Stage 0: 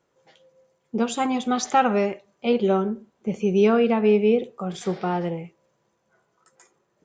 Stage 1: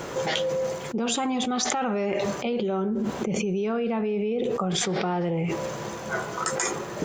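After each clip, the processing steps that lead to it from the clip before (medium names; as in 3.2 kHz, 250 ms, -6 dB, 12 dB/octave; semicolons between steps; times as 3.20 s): peak limiter -17.5 dBFS, peak gain reduction 10.5 dB; level flattener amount 100%; trim -3.5 dB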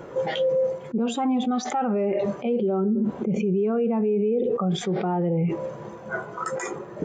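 peaking EQ 6.3 kHz -5 dB 1.3 oct; spectral contrast expander 1.5:1; trim -3 dB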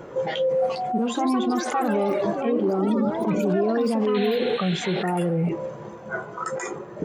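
ever faster or slower copies 508 ms, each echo +6 st, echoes 3, each echo -6 dB; painted sound noise, 4.14–5.03 s, 1.4–4.3 kHz -36 dBFS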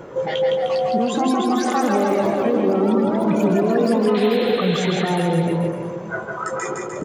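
bouncing-ball echo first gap 160 ms, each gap 0.9×, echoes 5; trim +2.5 dB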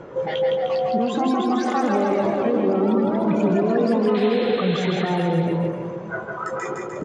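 distance through air 100 m; trim -1.5 dB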